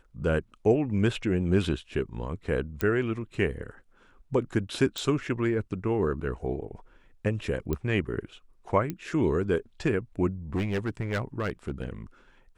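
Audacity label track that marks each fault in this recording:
2.810000	2.810000	click −12 dBFS
4.980000	4.980000	click −17 dBFS
7.730000	7.730000	click −16 dBFS
8.900000	8.900000	click −18 dBFS
10.550000	11.880000	clipping −24 dBFS

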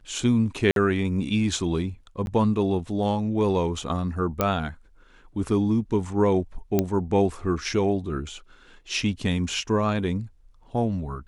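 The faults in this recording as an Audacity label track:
0.710000	0.760000	drop-out 52 ms
2.260000	2.270000	drop-out 11 ms
4.410000	4.410000	click −8 dBFS
6.790000	6.790000	click −8 dBFS

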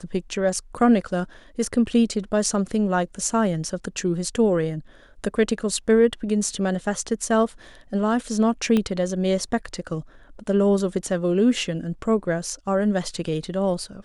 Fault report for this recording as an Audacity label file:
8.770000	8.770000	click −11 dBFS

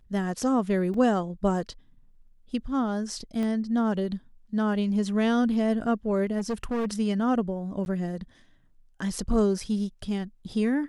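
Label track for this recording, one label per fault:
0.940000	0.940000	drop-out 2.8 ms
3.430000	3.430000	click −21 dBFS
6.380000	6.860000	clipping −24.5 dBFS
7.850000	7.860000	drop-out 11 ms

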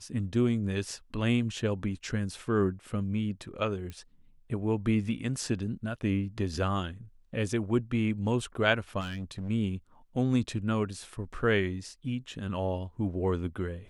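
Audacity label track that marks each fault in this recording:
3.900000	3.900000	click −27 dBFS
9.000000	9.500000	clipping −32 dBFS

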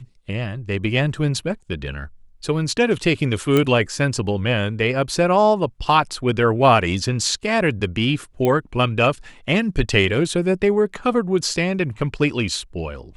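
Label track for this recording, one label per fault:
3.570000	3.570000	click −6 dBFS
8.450000	8.450000	click −9 dBFS

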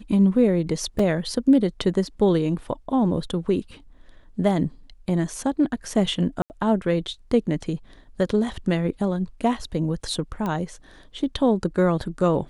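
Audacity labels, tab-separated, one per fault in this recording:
0.990000	0.990000	drop-out 3.8 ms
6.420000	6.500000	drop-out 79 ms
10.460000	10.460000	click −16 dBFS

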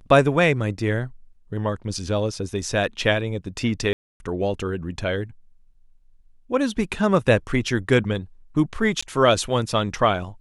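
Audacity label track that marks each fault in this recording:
3.930000	4.200000	drop-out 270 ms
9.010000	9.030000	drop-out 15 ms

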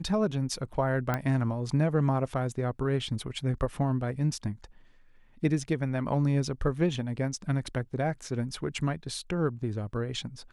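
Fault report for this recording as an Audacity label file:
1.140000	1.140000	click −15 dBFS

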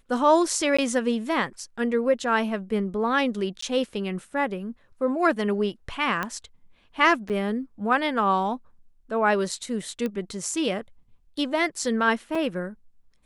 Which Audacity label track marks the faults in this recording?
0.770000	0.790000	drop-out 15 ms
3.610000	3.620000	drop-out 14 ms
6.230000	6.230000	click −14 dBFS
7.290000	7.300000	drop-out 8 ms
10.060000	10.060000	click −17 dBFS
12.350000	12.350000	drop-out 4.2 ms

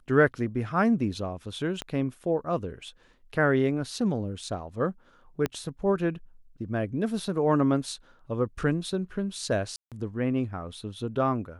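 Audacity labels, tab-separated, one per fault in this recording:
1.820000	1.820000	click −18 dBFS
5.460000	5.460000	click −14 dBFS
9.760000	9.920000	drop-out 157 ms

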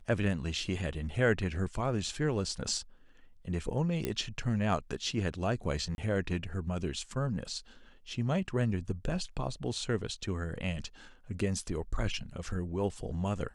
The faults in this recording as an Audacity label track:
4.050000	4.050000	click −17 dBFS
5.950000	5.980000	drop-out 31 ms

